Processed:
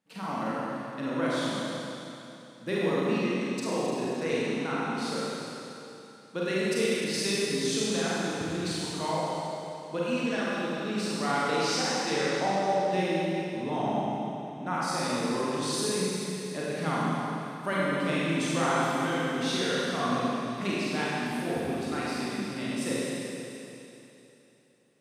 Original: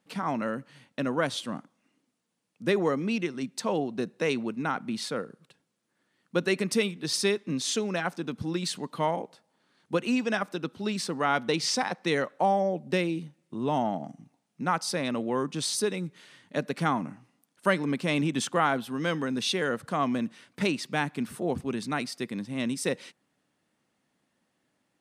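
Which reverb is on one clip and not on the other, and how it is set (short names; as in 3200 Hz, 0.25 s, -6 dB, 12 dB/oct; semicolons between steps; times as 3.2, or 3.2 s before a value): Schroeder reverb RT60 3.1 s, combs from 33 ms, DRR -8 dB; gain -8.5 dB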